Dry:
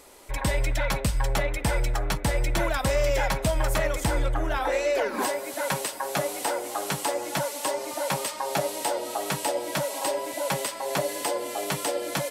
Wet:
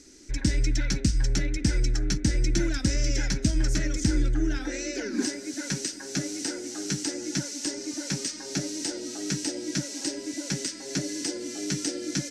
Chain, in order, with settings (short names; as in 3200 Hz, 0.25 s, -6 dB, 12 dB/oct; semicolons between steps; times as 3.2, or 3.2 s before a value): EQ curve 150 Hz 0 dB, 310 Hz +7 dB, 540 Hz -17 dB, 1100 Hz -25 dB, 1500 Hz -6 dB, 3300 Hz -9 dB, 5900 Hz +8 dB, 14000 Hz -27 dB; gain +1.5 dB